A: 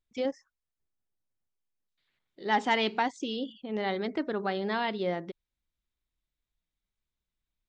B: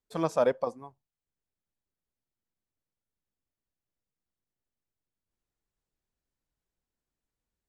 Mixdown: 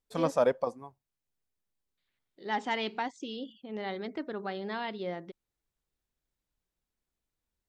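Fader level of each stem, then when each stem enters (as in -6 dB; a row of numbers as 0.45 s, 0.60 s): -5.5 dB, -0.5 dB; 0.00 s, 0.00 s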